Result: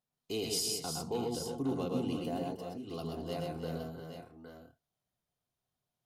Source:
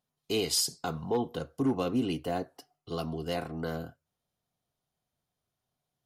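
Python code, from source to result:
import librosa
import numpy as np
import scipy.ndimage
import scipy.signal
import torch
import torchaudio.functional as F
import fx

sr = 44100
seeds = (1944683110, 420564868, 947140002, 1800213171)

p1 = x + fx.echo_multitap(x, sr, ms=(111, 128, 311, 355, 812, 840), db=(-6.5, -4.0, -10.5, -8.0, -10.5, -15.5), dry=0)
p2 = fx.dynamic_eq(p1, sr, hz=1700.0, q=1.3, threshold_db=-51.0, ratio=4.0, max_db=-7)
y = p2 * 10.0 ** (-6.5 / 20.0)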